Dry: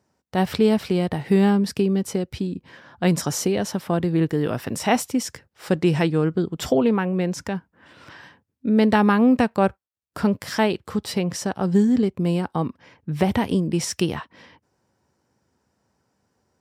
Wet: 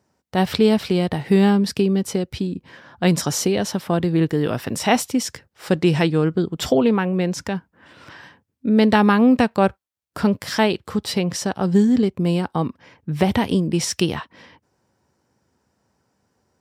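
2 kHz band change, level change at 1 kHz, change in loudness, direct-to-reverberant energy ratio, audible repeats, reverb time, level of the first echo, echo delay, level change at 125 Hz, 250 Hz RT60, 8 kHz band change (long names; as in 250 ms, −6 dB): +3.0 dB, +2.0 dB, +2.0 dB, no reverb audible, no echo audible, no reverb audible, no echo audible, no echo audible, +2.0 dB, no reverb audible, +3.0 dB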